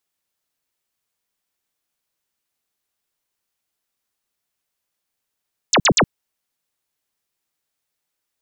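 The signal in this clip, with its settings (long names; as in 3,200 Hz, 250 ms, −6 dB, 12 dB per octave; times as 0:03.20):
repeated falling chirps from 8,500 Hz, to 110 Hz, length 0.07 s sine, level −11 dB, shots 3, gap 0.05 s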